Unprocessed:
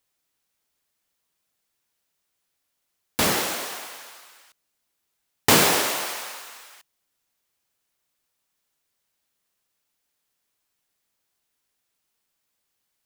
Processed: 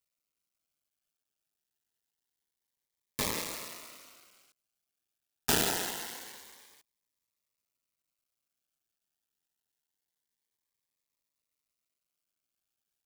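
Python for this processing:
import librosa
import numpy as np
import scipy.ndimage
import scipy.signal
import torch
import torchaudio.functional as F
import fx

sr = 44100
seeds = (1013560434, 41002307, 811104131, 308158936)

y = fx.cycle_switch(x, sr, every=2, mode='muted')
y = fx.notch_cascade(y, sr, direction='rising', hz=0.26)
y = y * librosa.db_to_amplitude(-7.0)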